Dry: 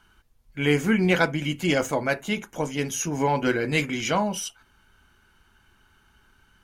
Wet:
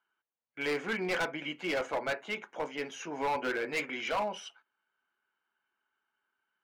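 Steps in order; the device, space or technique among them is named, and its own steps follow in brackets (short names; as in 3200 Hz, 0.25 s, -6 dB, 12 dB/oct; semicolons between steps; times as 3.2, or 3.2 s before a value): walkie-talkie (BPF 470–2600 Hz; hard clip -24 dBFS, distortion -8 dB; gate -53 dBFS, range -16 dB); gain -3 dB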